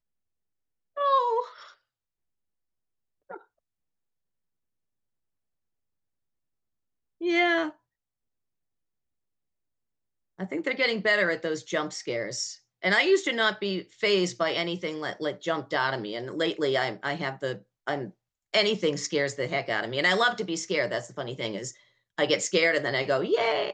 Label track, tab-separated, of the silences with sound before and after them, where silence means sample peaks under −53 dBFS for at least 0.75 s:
1.740000	3.300000	silence
3.450000	7.210000	silence
7.750000	10.390000	silence